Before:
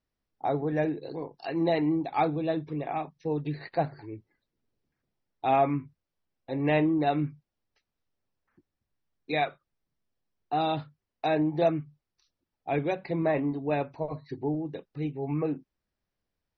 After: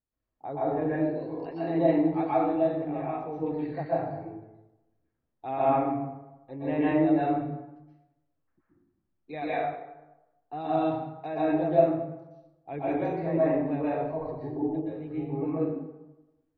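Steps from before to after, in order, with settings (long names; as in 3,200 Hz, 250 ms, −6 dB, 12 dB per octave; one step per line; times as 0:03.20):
low-pass filter 1,300 Hz 6 dB per octave
dense smooth reverb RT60 1 s, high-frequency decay 0.6×, pre-delay 110 ms, DRR −9 dB
level −8 dB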